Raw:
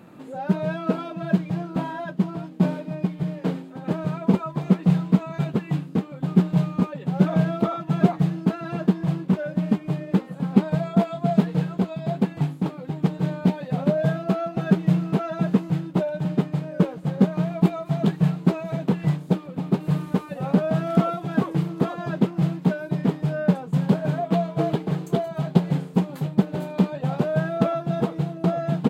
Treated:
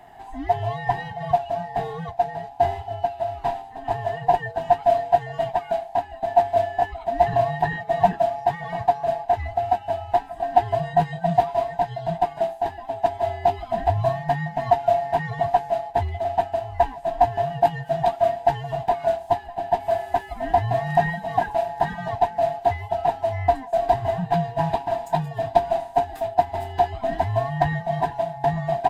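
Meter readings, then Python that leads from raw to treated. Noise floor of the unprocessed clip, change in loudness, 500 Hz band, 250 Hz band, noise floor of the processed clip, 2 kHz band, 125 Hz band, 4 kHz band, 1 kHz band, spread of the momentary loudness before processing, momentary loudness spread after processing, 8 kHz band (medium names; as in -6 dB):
-40 dBFS, +0.5 dB, +5.5 dB, -14.5 dB, -40 dBFS, +4.0 dB, -7.5 dB, +1.0 dB, +12.5 dB, 6 LU, 6 LU, no reading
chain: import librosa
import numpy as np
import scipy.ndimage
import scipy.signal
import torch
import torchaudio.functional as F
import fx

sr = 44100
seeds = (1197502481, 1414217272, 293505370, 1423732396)

y = fx.band_swap(x, sr, width_hz=500)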